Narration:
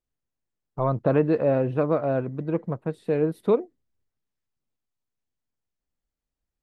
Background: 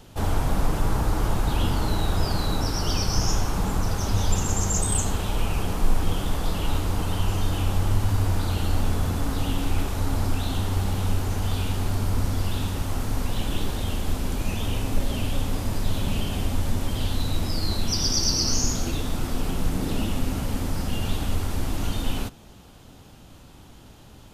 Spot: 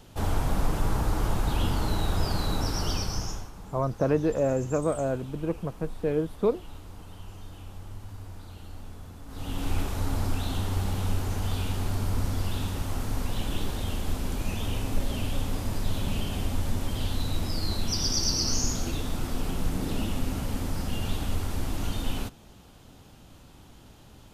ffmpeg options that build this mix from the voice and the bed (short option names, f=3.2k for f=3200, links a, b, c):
-filter_complex "[0:a]adelay=2950,volume=-3.5dB[a];[1:a]volume=12.5dB,afade=t=out:st=2.82:d=0.69:silence=0.158489,afade=t=in:st=9.27:d=0.44:silence=0.16788[b];[a][b]amix=inputs=2:normalize=0"